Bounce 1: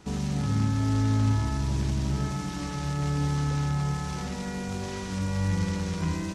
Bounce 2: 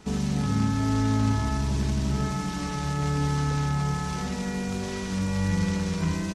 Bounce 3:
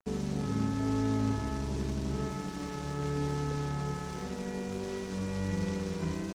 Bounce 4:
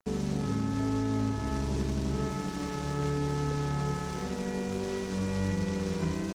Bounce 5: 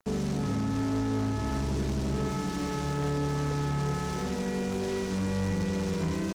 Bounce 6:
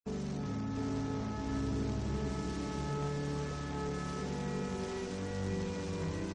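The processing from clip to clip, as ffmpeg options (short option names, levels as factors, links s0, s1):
-af "aecho=1:1:4.6:0.34,volume=1.26"
-af "equalizer=f=400:w=1.2:g=9.5,aeval=exprs='sgn(val(0))*max(abs(val(0))-0.0133,0)':c=same,volume=0.398"
-af "alimiter=limit=0.0631:level=0:latency=1:release=260,volume=1.5"
-af "asoftclip=type=tanh:threshold=0.0355,volume=1.78"
-af "aecho=1:1:705:0.668,afftfilt=real='re*gte(hypot(re,im),0.00398)':imag='im*gte(hypot(re,im),0.00398)':win_size=1024:overlap=0.75,volume=0.398"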